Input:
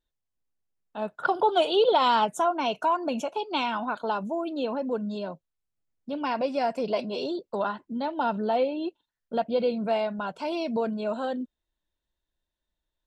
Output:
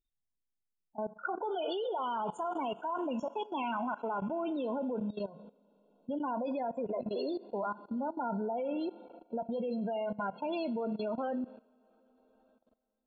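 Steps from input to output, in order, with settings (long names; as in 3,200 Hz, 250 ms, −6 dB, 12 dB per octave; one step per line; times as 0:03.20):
spectral peaks only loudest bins 16
coupled-rooms reverb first 0.37 s, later 4.1 s, from −18 dB, DRR 12 dB
output level in coarse steps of 17 dB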